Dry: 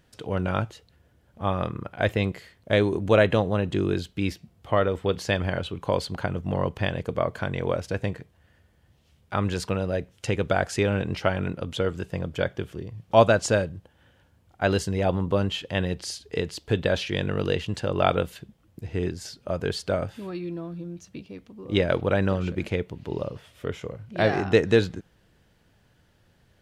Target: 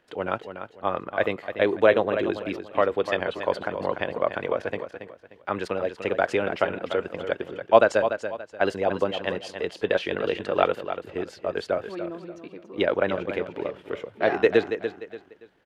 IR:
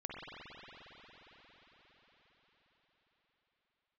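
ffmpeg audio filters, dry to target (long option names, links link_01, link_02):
-filter_complex "[0:a]acrossover=split=270 3300:gain=0.112 1 0.2[link_01][link_02][link_03];[link_01][link_02][link_03]amix=inputs=3:normalize=0,aecho=1:1:493|986|1479:0.335|0.104|0.0322,atempo=1.7,volume=2.5dB"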